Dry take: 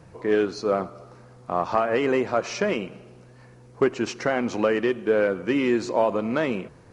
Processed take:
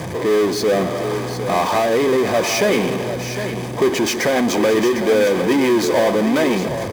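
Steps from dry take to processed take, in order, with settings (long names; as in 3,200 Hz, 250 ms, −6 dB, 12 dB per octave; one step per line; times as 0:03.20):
rotating-speaker cabinet horn 0.6 Hz, later 7 Hz, at 0:02.93
power curve on the samples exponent 0.35
notch comb filter 1,400 Hz
on a send: single-tap delay 755 ms −9.5 dB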